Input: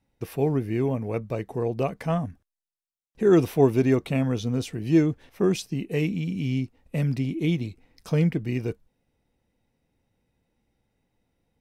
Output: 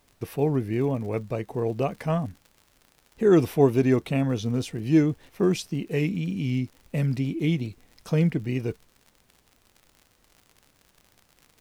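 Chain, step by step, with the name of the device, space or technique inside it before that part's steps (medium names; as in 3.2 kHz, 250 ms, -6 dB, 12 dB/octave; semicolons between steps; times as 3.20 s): vinyl LP (wow and flutter; crackle 77 per s -40 dBFS; pink noise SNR 39 dB)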